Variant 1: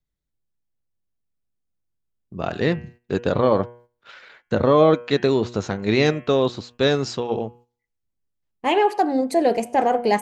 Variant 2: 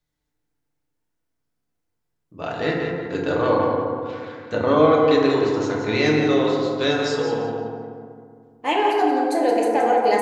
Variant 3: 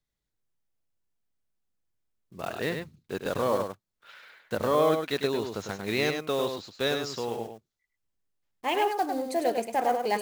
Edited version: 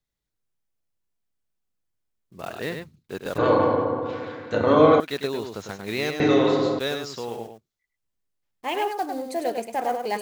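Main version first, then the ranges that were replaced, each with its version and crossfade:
3
0:03.38–0:05.00: punch in from 2
0:06.20–0:06.79: punch in from 2
not used: 1

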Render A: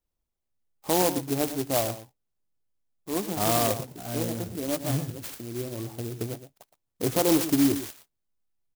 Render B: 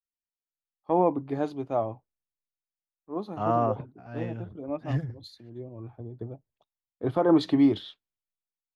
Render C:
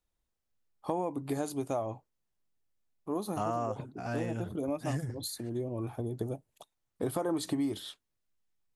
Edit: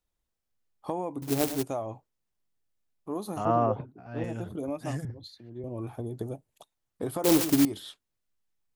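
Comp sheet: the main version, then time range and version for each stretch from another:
C
0:01.22–0:01.63: punch in from A
0:03.45–0:04.24: punch in from B
0:05.05–0:05.64: punch in from B
0:07.24–0:07.65: punch in from A

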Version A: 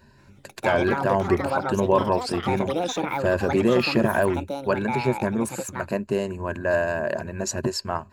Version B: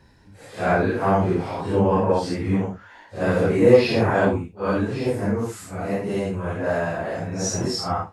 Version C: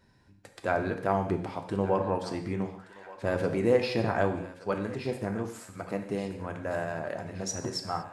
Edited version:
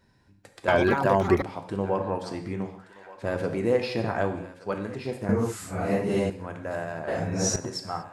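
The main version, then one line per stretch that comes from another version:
C
0:00.68–0:01.42: punch in from A
0:05.29–0:06.30: punch in from B
0:07.08–0:07.56: punch in from B

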